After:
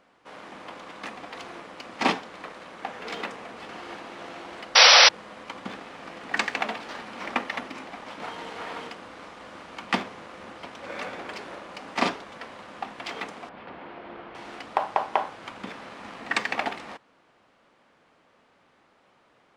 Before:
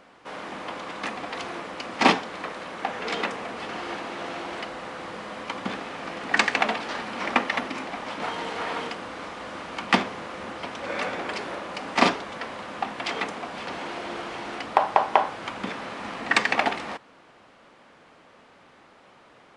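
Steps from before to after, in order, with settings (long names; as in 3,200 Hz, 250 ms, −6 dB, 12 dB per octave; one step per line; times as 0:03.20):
0:04.75–0:05.09: sound drawn into the spectrogram noise 450–5,900 Hz −8 dBFS
in parallel at −6 dB: dead-zone distortion −38 dBFS
0:13.49–0:14.35: on the sum: high-frequency loss of the air 390 metres
level −8.5 dB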